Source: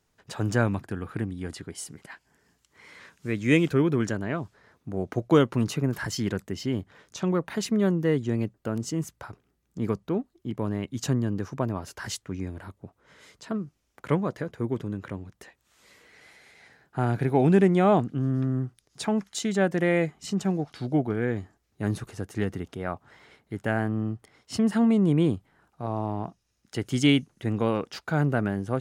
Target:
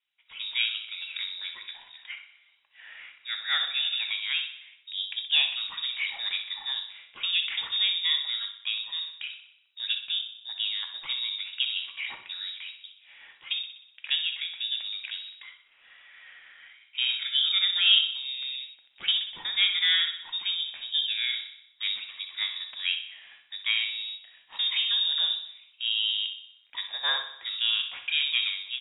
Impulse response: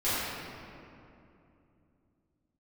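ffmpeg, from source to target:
-filter_complex "[0:a]dynaudnorm=framelen=130:gausssize=5:maxgain=11.5dB,acrossover=split=550 2300:gain=0.2 1 0.141[link_01][link_02][link_03];[link_01][link_02][link_03]amix=inputs=3:normalize=0,lowpass=frequency=3300:width_type=q:width=0.5098,lowpass=frequency=3300:width_type=q:width=0.6013,lowpass=frequency=3300:width_type=q:width=0.9,lowpass=frequency=3300:width_type=q:width=2.563,afreqshift=-3900,aecho=1:1:62|124|186|248|310|372|434:0.282|0.163|0.0948|0.055|0.0319|0.0185|0.0107,asplit=2[link_04][link_05];[1:a]atrim=start_sample=2205,atrim=end_sample=3969[link_06];[link_05][link_06]afir=irnorm=-1:irlink=0,volume=-14dB[link_07];[link_04][link_07]amix=inputs=2:normalize=0,volume=-6dB"

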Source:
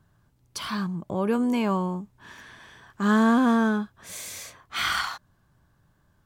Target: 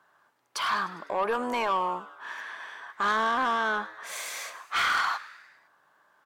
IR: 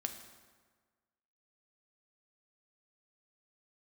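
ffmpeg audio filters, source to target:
-filter_complex "[0:a]highpass=450,equalizer=frequency=1200:width=0.43:gain=13,acompressor=threshold=-16dB:ratio=4,asoftclip=type=tanh:threshold=-17dB,asplit=2[link_01][link_02];[link_02]asplit=5[link_03][link_04][link_05][link_06][link_07];[link_03]adelay=101,afreqshift=110,volume=-17.5dB[link_08];[link_04]adelay=202,afreqshift=220,volume=-22.1dB[link_09];[link_05]adelay=303,afreqshift=330,volume=-26.7dB[link_10];[link_06]adelay=404,afreqshift=440,volume=-31.2dB[link_11];[link_07]adelay=505,afreqshift=550,volume=-35.8dB[link_12];[link_08][link_09][link_10][link_11][link_12]amix=inputs=5:normalize=0[link_13];[link_01][link_13]amix=inputs=2:normalize=0,volume=-3dB"

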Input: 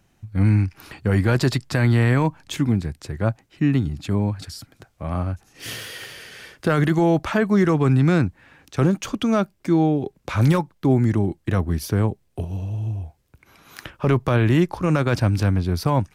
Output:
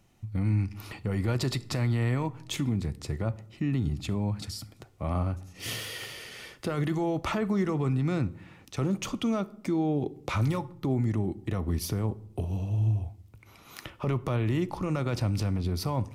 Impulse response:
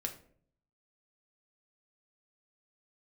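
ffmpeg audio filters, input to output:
-filter_complex "[0:a]alimiter=limit=-18dB:level=0:latency=1:release=89,bandreject=frequency=1600:width=5.4,asplit=2[link_01][link_02];[1:a]atrim=start_sample=2205,asetrate=29988,aresample=44100[link_03];[link_02][link_03]afir=irnorm=-1:irlink=0,volume=-10.5dB[link_04];[link_01][link_04]amix=inputs=2:normalize=0,volume=-4.5dB"

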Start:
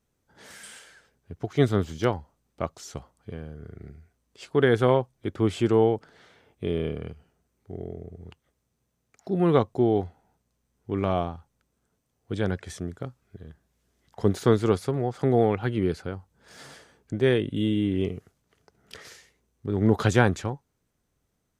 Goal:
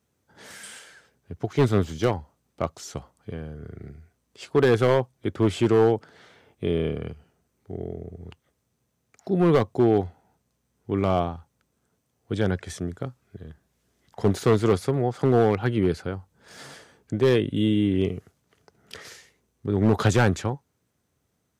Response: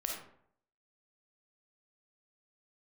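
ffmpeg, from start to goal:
-af "highpass=frequency=66:width=0.5412,highpass=frequency=66:width=1.3066,asoftclip=type=hard:threshold=-15.5dB,volume=3dB"

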